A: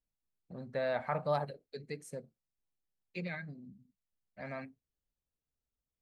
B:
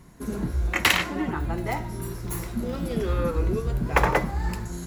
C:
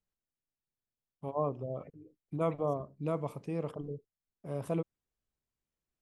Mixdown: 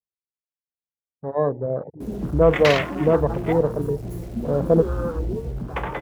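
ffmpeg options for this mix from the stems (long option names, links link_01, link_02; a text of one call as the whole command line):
ffmpeg -i stem1.wav -i stem2.wav -i stem3.wav -filter_complex "[1:a]acrusher=bits=5:mix=0:aa=0.000001,asoftclip=type=tanh:threshold=-16.5dB,adelay=1800,volume=-9dB[link_01];[2:a]lowpass=1200,equalizer=frequency=480:width_type=o:width=0.41:gain=6.5,volume=2dB[link_02];[link_01][link_02]amix=inputs=2:normalize=0,afwtdn=0.00794,highpass=45,dynaudnorm=framelen=220:gausssize=13:maxgain=11.5dB" out.wav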